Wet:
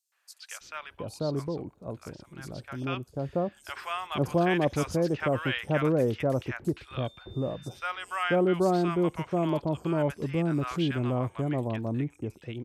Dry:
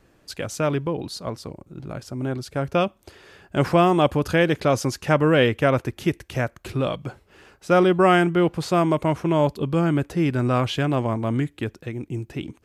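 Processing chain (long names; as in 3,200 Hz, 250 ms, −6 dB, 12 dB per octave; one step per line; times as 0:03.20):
0:06.76–0:07.74: steady tone 3,600 Hz −47 dBFS
three-band delay without the direct sound highs, mids, lows 120/610 ms, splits 970/5,100 Hz
level −6.5 dB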